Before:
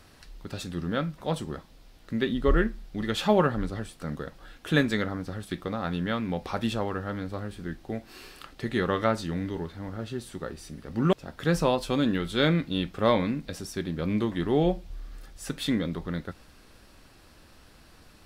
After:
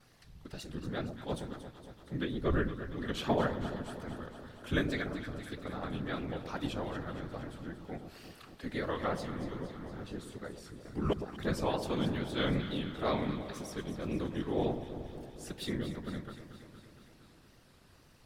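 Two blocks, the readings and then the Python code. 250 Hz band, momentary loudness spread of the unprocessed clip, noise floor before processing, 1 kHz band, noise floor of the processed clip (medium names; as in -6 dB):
-8.0 dB, 14 LU, -55 dBFS, -7.5 dB, -61 dBFS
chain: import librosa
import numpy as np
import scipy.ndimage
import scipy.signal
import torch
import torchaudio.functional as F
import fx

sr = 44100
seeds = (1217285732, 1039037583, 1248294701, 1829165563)

y = fx.wow_flutter(x, sr, seeds[0], rate_hz=2.1, depth_cents=110.0)
y = fx.whisperise(y, sr, seeds[1])
y = fx.echo_alternate(y, sr, ms=116, hz=960.0, feedback_pct=81, wet_db=-9.0)
y = F.gain(torch.from_numpy(y), -8.5).numpy()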